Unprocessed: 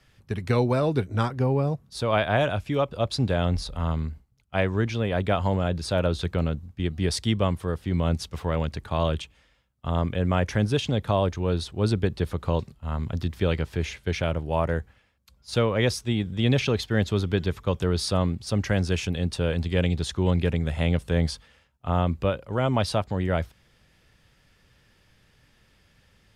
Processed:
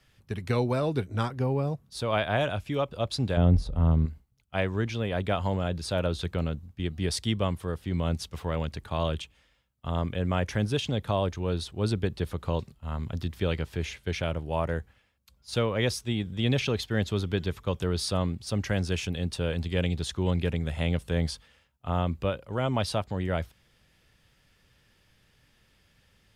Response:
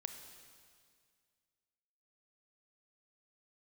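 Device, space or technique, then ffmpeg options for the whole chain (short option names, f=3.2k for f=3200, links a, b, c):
presence and air boost: -filter_complex "[0:a]equalizer=f=3.1k:t=o:w=0.77:g=2,highshelf=f=9.7k:g=6,asettb=1/sr,asplit=3[a][b][c];[a]atrim=end=3.374[d];[b]atrim=start=3.37:end=4.06,asetpts=PTS-STARTPTS,afade=t=in:d=0.004:c=qsin,afade=t=out:st=0.686:d=0.004:c=qsin,tiltshelf=f=910:g=9[e];[c]atrim=start=4.056[f];[d][e]acrossfade=d=0.004:c1=hsin:c2=qsin[g];[g][f]acrossfade=d=0.004:c1=qsin:c2=hsin,volume=-4dB"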